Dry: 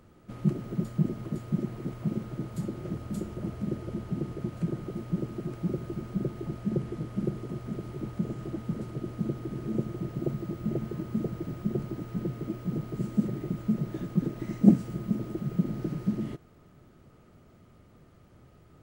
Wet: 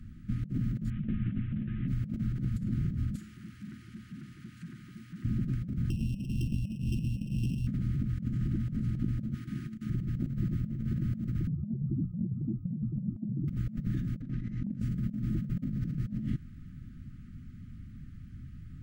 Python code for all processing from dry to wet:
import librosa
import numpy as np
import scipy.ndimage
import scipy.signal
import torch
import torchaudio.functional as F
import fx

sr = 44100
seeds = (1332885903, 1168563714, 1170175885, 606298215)

y = fx.chain(x, sr, fx.cvsd(bps=16000),
    fx.over_compress(threshold_db=-29.0, ratio=-0.5),
    fx.ensemble(), at=(0.9, 1.88))
y = fx.chain(y, sr, fx.highpass(hz=1400.0, slope=6),
    fx.transformer_sat(knee_hz=950.0), at=(3.15, 5.25))
y = fx.chain(y, sr, fx.sample_sort(block=16),
    fx.brickwall_bandstop(low_hz=470.0, high_hz=2500.0), at=(5.9, 7.67))
y = fx.chain(y, sr, fx.highpass(hz=650.0, slope=6),
    fx.over_compress(threshold_db=-44.0, ratio=-0.5), at=(9.34, 9.9))
y = fx.chain(y, sr, fx.spec_expand(power=2.5),
    fx.hum_notches(base_hz=60, count=3), at=(11.47, 13.48))
y = fx.chain(y, sr, fx.air_absorb(metres=100.0),
    fx.over_compress(threshold_db=-25.0, ratio=-0.5), at=(14.21, 14.8))
y = scipy.signal.sosfilt(scipy.signal.cheby1(3, 1.0, [250.0, 1600.0], 'bandstop', fs=sr, output='sos'), y)
y = fx.tilt_eq(y, sr, slope=-2.5)
y = fx.over_compress(y, sr, threshold_db=-33.0, ratio=-1.0)